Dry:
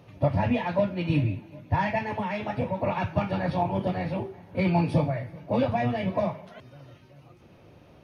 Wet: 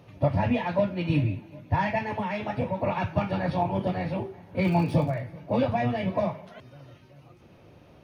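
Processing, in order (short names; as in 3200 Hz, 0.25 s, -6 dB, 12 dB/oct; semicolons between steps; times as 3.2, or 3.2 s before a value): 4.62–5.19 crackle 210/s -> 44/s -37 dBFS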